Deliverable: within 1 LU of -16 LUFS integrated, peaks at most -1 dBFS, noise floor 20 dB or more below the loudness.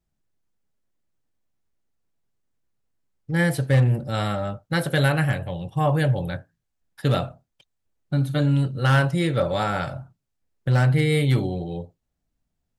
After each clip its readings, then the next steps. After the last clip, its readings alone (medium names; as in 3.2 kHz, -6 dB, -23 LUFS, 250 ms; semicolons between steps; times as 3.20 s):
clipped samples 0.3%; clipping level -12.0 dBFS; loudness -23.0 LUFS; peak level -12.0 dBFS; loudness target -16.0 LUFS
-> clip repair -12 dBFS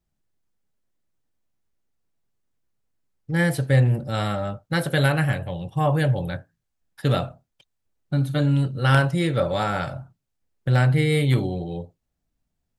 clipped samples 0.0%; loudness -22.5 LUFS; peak level -3.0 dBFS; loudness target -16.0 LUFS
-> trim +6.5 dB; peak limiter -1 dBFS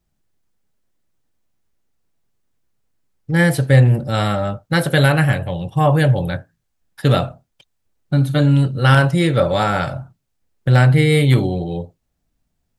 loudness -16.5 LUFS; peak level -1.0 dBFS; noise floor -72 dBFS